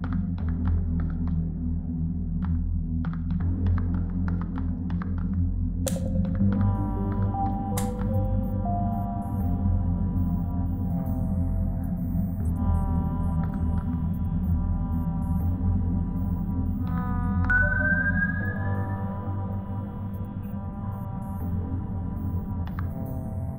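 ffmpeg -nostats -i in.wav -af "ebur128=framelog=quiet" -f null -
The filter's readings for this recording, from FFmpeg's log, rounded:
Integrated loudness:
  I:         -27.8 LUFS
  Threshold: -37.8 LUFS
Loudness range:
  LRA:         6.1 LU
  Threshold: -47.6 LUFS
  LRA low:   -31.7 LUFS
  LRA high:  -25.7 LUFS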